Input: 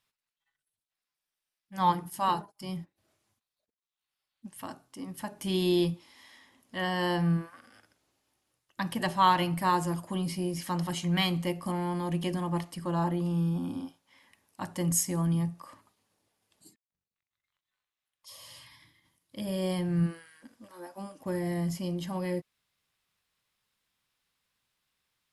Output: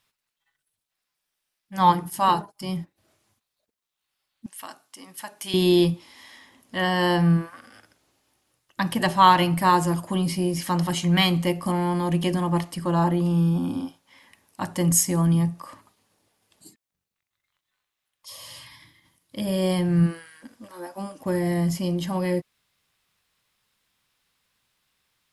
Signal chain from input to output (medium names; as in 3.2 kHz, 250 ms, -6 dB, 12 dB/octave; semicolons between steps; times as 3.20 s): 4.46–5.54 s: high-pass 1.5 kHz 6 dB/octave; trim +7.5 dB